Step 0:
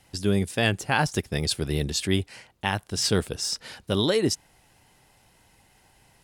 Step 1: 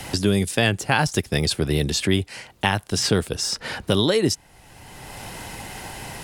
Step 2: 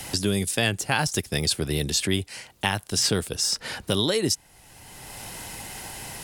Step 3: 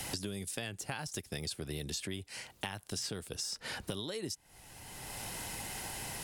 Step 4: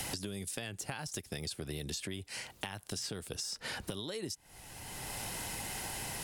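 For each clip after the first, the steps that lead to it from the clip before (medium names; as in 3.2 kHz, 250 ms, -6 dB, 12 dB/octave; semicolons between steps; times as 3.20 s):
three bands compressed up and down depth 70%; trim +4 dB
treble shelf 4.3 kHz +9 dB; trim -5 dB
compression 10:1, threshold -32 dBFS, peak gain reduction 15 dB; trim -3.5 dB
compression 2.5:1, threshold -41 dBFS, peak gain reduction 6.5 dB; trim +3.5 dB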